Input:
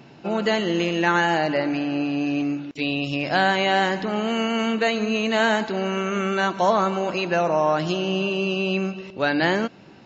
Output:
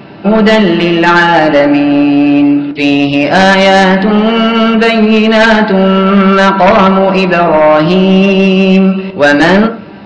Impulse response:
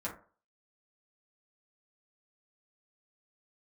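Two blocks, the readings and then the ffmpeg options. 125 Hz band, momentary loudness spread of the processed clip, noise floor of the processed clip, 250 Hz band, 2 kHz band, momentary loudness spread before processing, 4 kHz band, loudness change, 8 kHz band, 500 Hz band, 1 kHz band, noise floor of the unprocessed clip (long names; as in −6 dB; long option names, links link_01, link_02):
+18.0 dB, 3 LU, −27 dBFS, +17.5 dB, +14.0 dB, 6 LU, +13.0 dB, +15.5 dB, can't be measured, +15.0 dB, +14.0 dB, −47 dBFS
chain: -filter_complex "[0:a]acontrast=39,aresample=11025,aresample=44100,asplit=2[link_01][link_02];[1:a]atrim=start_sample=2205,lowpass=3900[link_03];[link_02][link_03]afir=irnorm=-1:irlink=0,volume=-2dB[link_04];[link_01][link_04]amix=inputs=2:normalize=0,aeval=exprs='1.58*sin(PI/2*2.51*val(0)/1.58)':channel_layout=same,volume=-5dB"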